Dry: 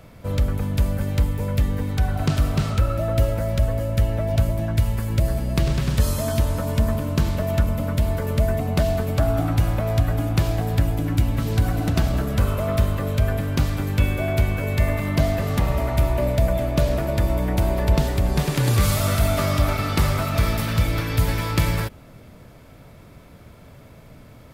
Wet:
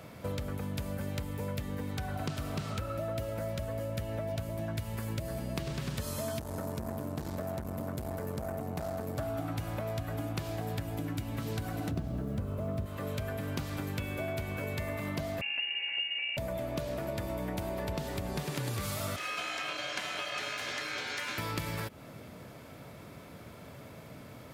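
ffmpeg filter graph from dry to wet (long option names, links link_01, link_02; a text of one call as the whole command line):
ffmpeg -i in.wav -filter_complex "[0:a]asettb=1/sr,asplit=3[link_01][link_02][link_03];[link_01]atrim=end=6.394[link_04];[link_02]atrim=start=6.39:end=9.19,asetpts=PTS-STARTPTS,afade=type=in:duration=0.004:curve=qsin,afade=type=out:start_time=2.796:duration=0.004:curve=qsin,equalizer=frequency=2900:width_type=o:width=1.3:gain=-9,aeval=exprs='(tanh(10*val(0)+0.65)-tanh(0.65))/10':channel_layout=same[link_05];[link_03]atrim=start=9.186[link_06];[link_04][link_05]acrossfade=duration=0.004:curve1=hsin:curve2=qsin[link_07];[link_07][link_06]acrossfade=duration=0.004:curve1=qsin:curve2=hsin,asettb=1/sr,asplit=3[link_08][link_09][link_10];[link_08]atrim=end=11.914[link_11];[link_09]atrim=start=11.91:end=12.86,asetpts=PTS-STARTPTS,afade=type=in:duration=0.004:curve=qsin,afade=type=out:start_time=0.946:duration=0.004:curve=qsin,tiltshelf=frequency=690:gain=8.5,acrusher=bits=7:mix=0:aa=0.5[link_12];[link_10]atrim=start=12.856[link_13];[link_11][link_12]acrossfade=duration=0.004:curve1=hsin:curve2=qsin[link_14];[link_14][link_13]acrossfade=duration=0.004:curve1=qsin:curve2=hsin,asettb=1/sr,asplit=3[link_15][link_16][link_17];[link_15]atrim=end=15.414[link_18];[link_16]atrim=start=15.41:end=16.37,asetpts=PTS-STARTPTS,afade=type=in:duration=0.004:curve=qsin,afade=type=out:start_time=0.956:duration=0.004:curve=qsin,lowpass=frequency=2500:width_type=q:width=0.5098,lowpass=frequency=2500:width_type=q:width=0.6013,lowpass=frequency=2500:width_type=q:width=0.9,lowpass=frequency=2500:width_type=q:width=2.563,afreqshift=-2900,equalizer=frequency=1200:width_type=o:width=0.77:gain=-13.5[link_19];[link_17]atrim=start=16.366[link_20];[link_18][link_19]acrossfade=duration=0.004:curve1=hsin:curve2=qsin[link_21];[link_21][link_20]acrossfade=duration=0.004:curve1=qsin:curve2=hsin,asettb=1/sr,asplit=3[link_22][link_23][link_24];[link_22]atrim=end=19.164[link_25];[link_23]atrim=start=19.16:end=21.38,asetpts=PTS-STARTPTS,afade=type=in:duration=0.004:curve=qsin,afade=type=out:start_time=2.216:duration=0.004:curve=qsin,highpass=270,lowpass=7300,aeval=exprs='val(0)*sin(2*PI*1900*n/s)':channel_layout=same[link_26];[link_24]atrim=start=21.376[link_27];[link_25][link_26]acrossfade=duration=0.004:curve1=hsin:curve2=qsin[link_28];[link_28][link_27]acrossfade=duration=0.004:curve1=qsin:curve2=hsin,highpass=63,lowshelf=frequency=84:gain=-12,acompressor=threshold=-33dB:ratio=6" out.wav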